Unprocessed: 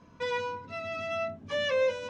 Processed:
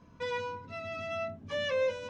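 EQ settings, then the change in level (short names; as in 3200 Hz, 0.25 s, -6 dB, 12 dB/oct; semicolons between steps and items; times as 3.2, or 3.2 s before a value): low shelf 150 Hz +6.5 dB; -3.5 dB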